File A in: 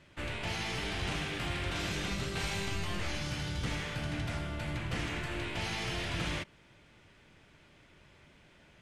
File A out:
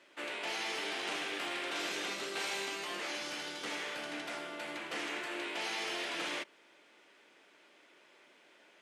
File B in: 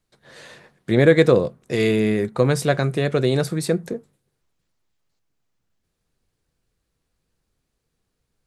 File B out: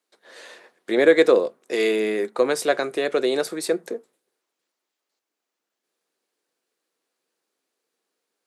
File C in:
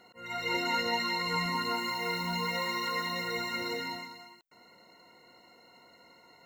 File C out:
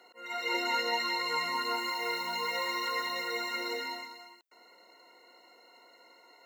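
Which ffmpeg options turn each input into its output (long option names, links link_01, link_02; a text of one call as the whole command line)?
ffmpeg -i in.wav -af "highpass=frequency=310:width=0.5412,highpass=frequency=310:width=1.3066" out.wav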